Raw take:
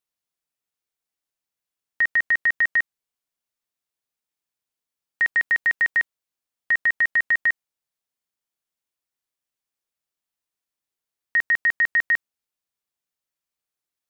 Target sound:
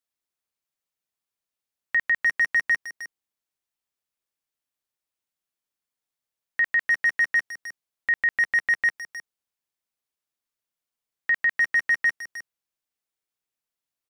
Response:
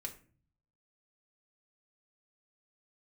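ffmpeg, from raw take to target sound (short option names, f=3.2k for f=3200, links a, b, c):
-filter_complex "[0:a]areverse,asplit=2[a][b];[b]adelay=310,highpass=300,lowpass=3.4k,asoftclip=type=hard:threshold=-23dB,volume=-8dB[c];[a][c]amix=inputs=2:normalize=0,volume=-2dB"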